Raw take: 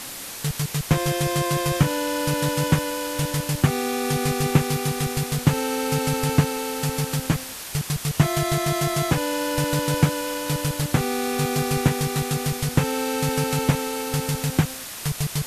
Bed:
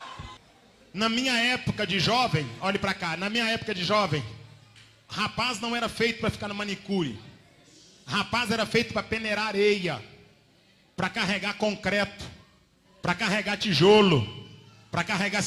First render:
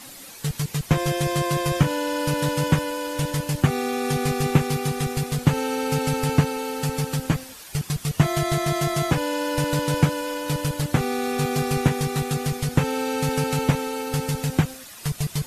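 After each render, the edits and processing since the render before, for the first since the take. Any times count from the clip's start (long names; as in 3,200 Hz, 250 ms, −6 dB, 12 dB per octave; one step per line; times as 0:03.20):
broadband denoise 10 dB, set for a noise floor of −36 dBFS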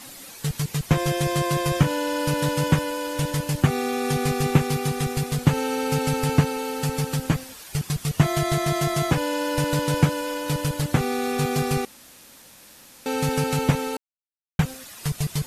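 0:11.85–0:13.06: fill with room tone
0:13.97–0:14.59: silence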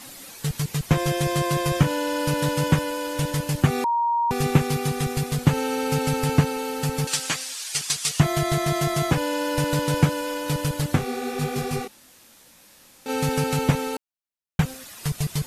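0:03.84–0:04.31: beep over 940 Hz −19 dBFS
0:07.07–0:08.20: meter weighting curve ITU-R 468
0:10.95–0:13.08: micro pitch shift up and down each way 48 cents → 33 cents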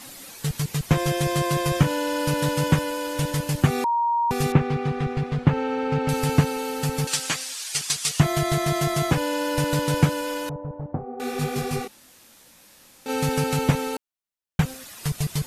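0:04.52–0:06.09: low-pass filter 2,300 Hz
0:10.49–0:11.20: transistor ladder low-pass 950 Hz, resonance 40%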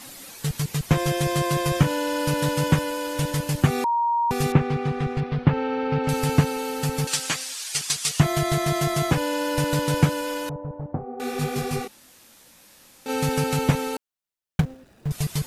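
0:05.20–0:06.04: Savitzky-Golay smoothing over 15 samples
0:14.60–0:15.11: running median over 41 samples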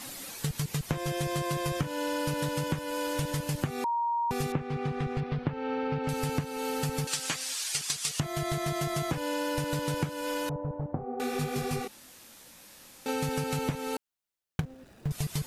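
downward compressor 6 to 1, threshold −28 dBFS, peak gain reduction 16 dB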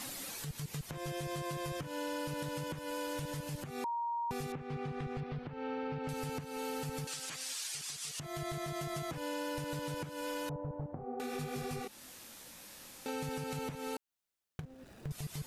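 downward compressor 2 to 1, threshold −41 dBFS, peak gain reduction 9.5 dB
brickwall limiter −30 dBFS, peak gain reduction 10.5 dB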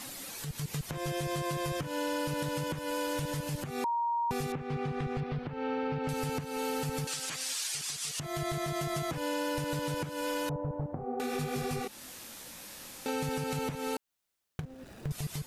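automatic gain control gain up to 5.5 dB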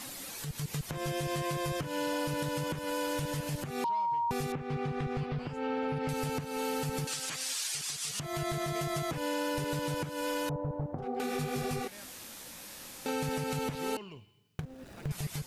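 mix in bed −27 dB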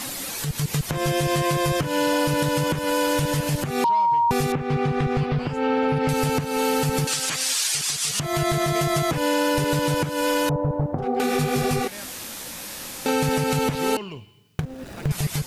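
level +11.5 dB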